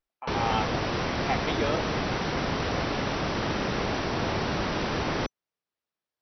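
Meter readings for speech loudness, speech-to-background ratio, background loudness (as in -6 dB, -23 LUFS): -32.5 LUFS, -3.5 dB, -29.0 LUFS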